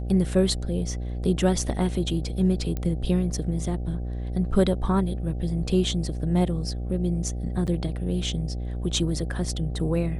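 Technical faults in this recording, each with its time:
buzz 60 Hz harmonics 13 -30 dBFS
2.77 s: pop -17 dBFS
7.67–7.68 s: dropout 6.1 ms

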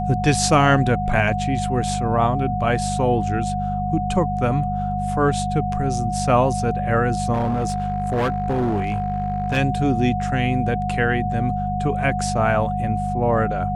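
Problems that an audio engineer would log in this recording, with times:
hum 50 Hz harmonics 4 -26 dBFS
whine 730 Hz -24 dBFS
7.33–9.58 s: clipped -17 dBFS

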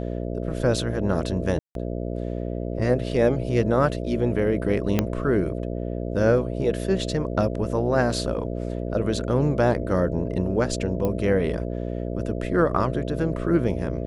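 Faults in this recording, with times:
buzz 60 Hz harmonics 11 -29 dBFS
1.59–1.75 s: dropout 162 ms
4.99 s: pop -7 dBFS
11.05 s: pop -14 dBFS

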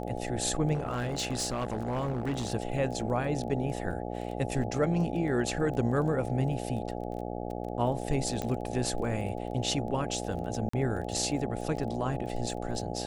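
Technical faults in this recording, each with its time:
buzz 60 Hz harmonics 14 -36 dBFS
crackle 14 per s -37 dBFS
0.73–2.52 s: clipped -26.5 dBFS
3.91 s: dropout 2.9 ms
8.42 s: pop -19 dBFS
10.69–10.73 s: dropout 44 ms

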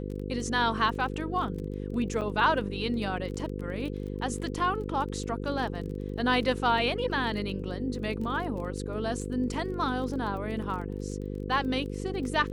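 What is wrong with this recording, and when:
buzz 50 Hz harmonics 10 -35 dBFS
crackle 22 per s -37 dBFS
2.21–2.22 s: dropout 6.9 ms

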